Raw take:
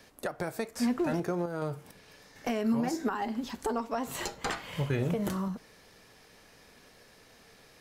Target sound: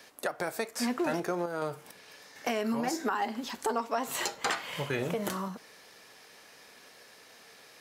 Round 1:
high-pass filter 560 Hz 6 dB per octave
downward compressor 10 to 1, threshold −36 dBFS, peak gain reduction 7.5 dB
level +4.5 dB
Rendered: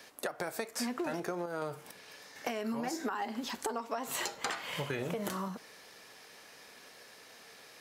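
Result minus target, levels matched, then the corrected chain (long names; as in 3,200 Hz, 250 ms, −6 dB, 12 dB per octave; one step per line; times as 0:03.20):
downward compressor: peak gain reduction +7.5 dB
high-pass filter 560 Hz 6 dB per octave
level +4.5 dB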